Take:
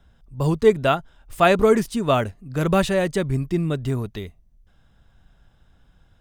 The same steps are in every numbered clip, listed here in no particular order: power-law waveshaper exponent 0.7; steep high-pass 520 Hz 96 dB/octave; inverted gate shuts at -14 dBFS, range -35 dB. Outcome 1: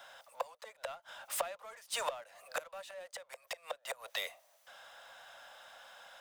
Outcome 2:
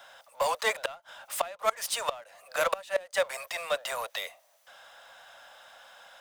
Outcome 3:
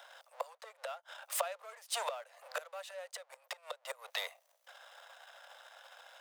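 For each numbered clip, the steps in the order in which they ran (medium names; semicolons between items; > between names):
inverted gate > steep high-pass > power-law waveshaper; steep high-pass > inverted gate > power-law waveshaper; inverted gate > power-law waveshaper > steep high-pass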